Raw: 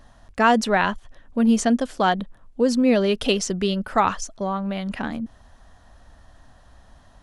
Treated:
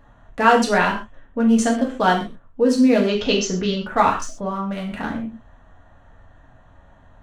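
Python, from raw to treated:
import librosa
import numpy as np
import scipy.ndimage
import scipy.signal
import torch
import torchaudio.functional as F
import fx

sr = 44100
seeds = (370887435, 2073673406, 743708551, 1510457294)

y = fx.wiener(x, sr, points=9)
y = fx.steep_lowpass(y, sr, hz=7000.0, slope=72, at=(3.05, 3.75), fade=0.02)
y = fx.rev_gated(y, sr, seeds[0], gate_ms=160, shape='falling', drr_db=-2.0)
y = y * 10.0 ** (-1.0 / 20.0)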